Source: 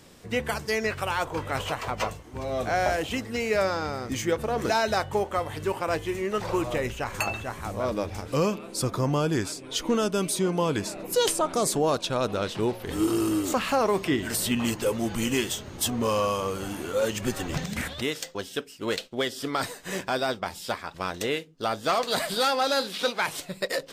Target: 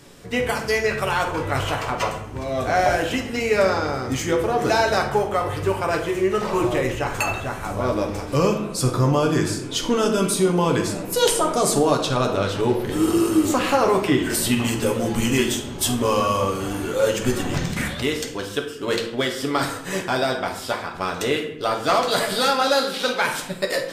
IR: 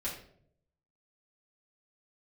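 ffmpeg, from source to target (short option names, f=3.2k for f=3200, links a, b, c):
-filter_complex "[0:a]asplit=2[a][b];[1:a]atrim=start_sample=2205,asetrate=27342,aresample=44100[c];[b][c]afir=irnorm=-1:irlink=0,volume=-3.5dB[d];[a][d]amix=inputs=2:normalize=0"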